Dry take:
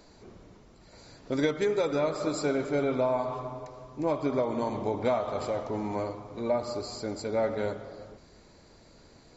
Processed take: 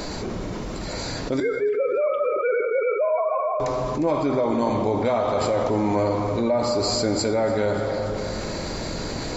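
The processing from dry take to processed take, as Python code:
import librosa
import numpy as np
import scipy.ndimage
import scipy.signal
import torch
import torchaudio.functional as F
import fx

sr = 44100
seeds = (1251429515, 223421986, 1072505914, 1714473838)

y = fx.sine_speech(x, sr, at=(1.4, 3.6))
y = fx.rider(y, sr, range_db=5, speed_s=0.5)
y = fx.echo_feedback(y, sr, ms=290, feedback_pct=42, wet_db=-17.5)
y = fx.rev_double_slope(y, sr, seeds[0], early_s=0.66, late_s=2.3, knee_db=-18, drr_db=9.0)
y = fx.env_flatten(y, sr, amount_pct=70)
y = F.gain(torch.from_numpy(y), 1.5).numpy()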